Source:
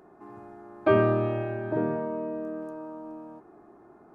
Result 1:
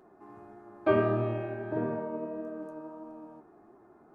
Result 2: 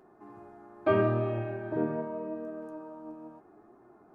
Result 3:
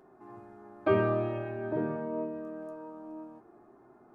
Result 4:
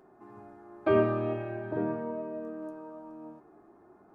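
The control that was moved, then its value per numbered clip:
flange, rate: 1.6, 0.79, 0.26, 0.44 Hz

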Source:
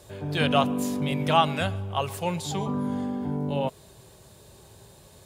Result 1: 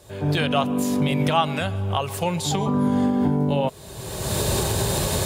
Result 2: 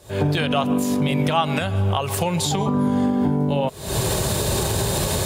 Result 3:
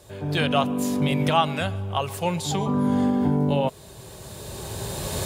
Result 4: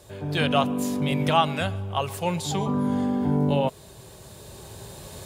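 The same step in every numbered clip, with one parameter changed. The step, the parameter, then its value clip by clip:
recorder AGC, rising by: 35, 89, 13, 5.3 dB/s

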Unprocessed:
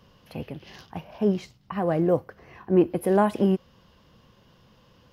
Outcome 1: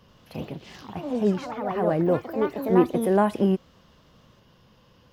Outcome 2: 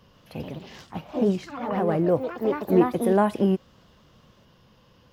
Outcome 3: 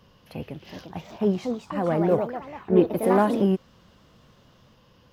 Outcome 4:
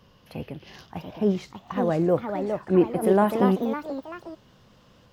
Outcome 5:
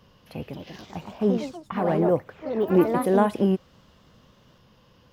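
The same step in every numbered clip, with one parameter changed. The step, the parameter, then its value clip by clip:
echoes that change speed, time: 84, 139, 430, 744, 271 ms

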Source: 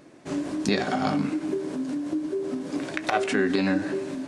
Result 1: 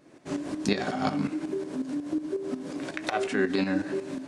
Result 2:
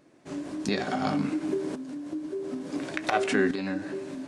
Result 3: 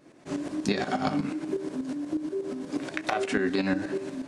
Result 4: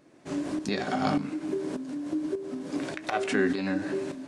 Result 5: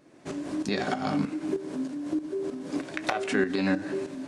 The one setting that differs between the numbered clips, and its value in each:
tremolo, rate: 5.5, 0.57, 8.3, 1.7, 3.2 Hz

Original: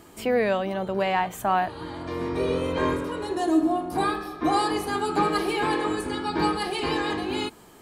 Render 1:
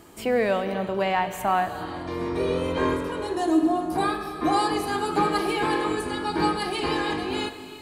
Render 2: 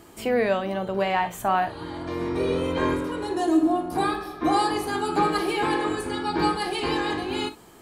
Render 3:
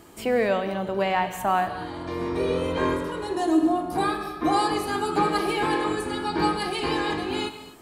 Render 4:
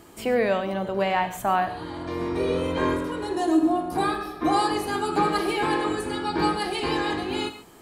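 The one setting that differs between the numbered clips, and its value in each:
non-linear reverb, gate: 440, 80, 280, 160 ms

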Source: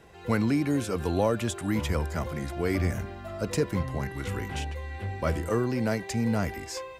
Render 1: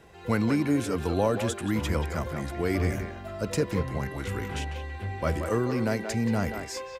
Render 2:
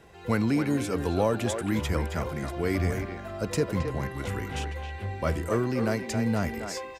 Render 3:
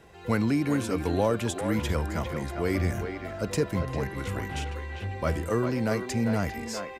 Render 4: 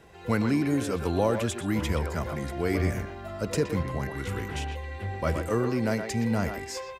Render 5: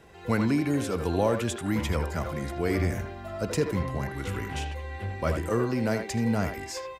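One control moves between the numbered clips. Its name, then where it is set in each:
speakerphone echo, time: 180, 270, 400, 120, 80 ms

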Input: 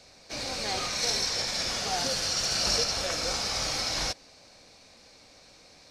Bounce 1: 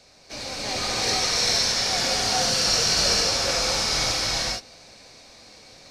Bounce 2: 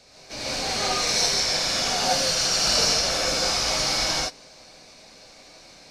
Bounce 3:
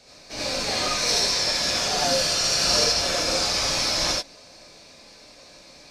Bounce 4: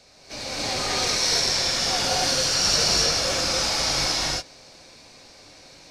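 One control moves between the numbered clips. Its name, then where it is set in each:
non-linear reverb, gate: 0.49, 0.19, 0.11, 0.31 s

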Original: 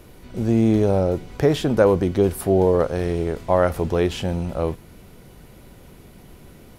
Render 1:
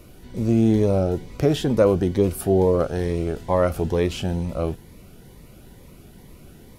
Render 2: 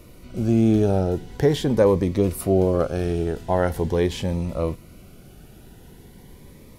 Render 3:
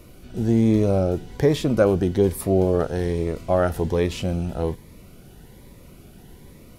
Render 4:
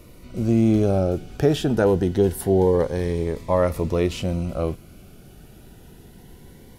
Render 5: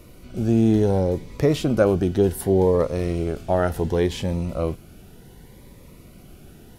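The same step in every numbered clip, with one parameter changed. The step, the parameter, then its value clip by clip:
cascading phaser, rate: 2.2, 0.43, 1.2, 0.25, 0.67 Hz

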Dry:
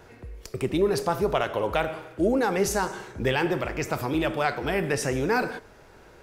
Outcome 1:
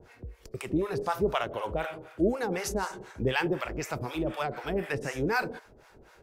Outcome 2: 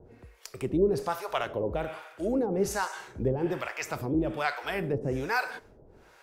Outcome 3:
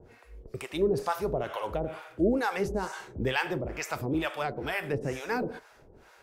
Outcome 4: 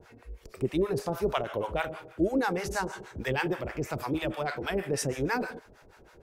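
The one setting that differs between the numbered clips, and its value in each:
harmonic tremolo, rate: 4, 1.2, 2.2, 6.3 Hz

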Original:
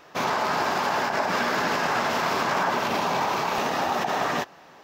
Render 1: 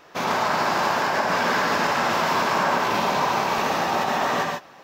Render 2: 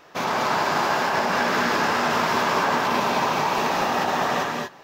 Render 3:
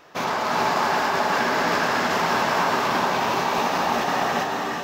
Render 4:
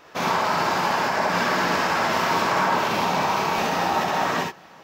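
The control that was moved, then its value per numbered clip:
non-linear reverb, gate: 170, 260, 460, 90 ms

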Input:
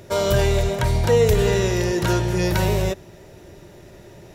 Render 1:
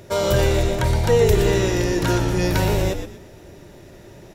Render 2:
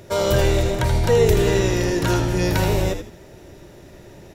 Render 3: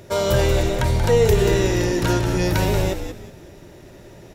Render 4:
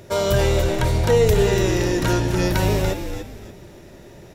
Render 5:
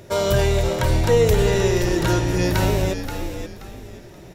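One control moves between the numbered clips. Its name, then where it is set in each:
frequency-shifting echo, time: 119, 80, 183, 288, 528 ms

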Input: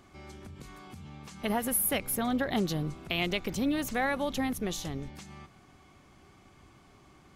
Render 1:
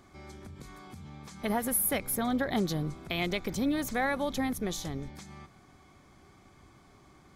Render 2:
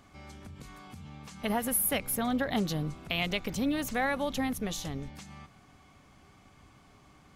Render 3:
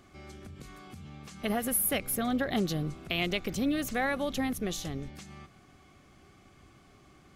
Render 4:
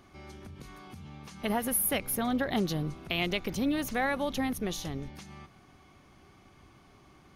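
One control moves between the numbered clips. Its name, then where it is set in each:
notch, frequency: 2800, 360, 930, 7600 Hz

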